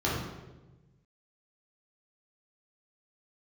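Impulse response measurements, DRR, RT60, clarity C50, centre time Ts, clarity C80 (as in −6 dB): −7.0 dB, 1.1 s, 0.5 dB, 68 ms, 3.5 dB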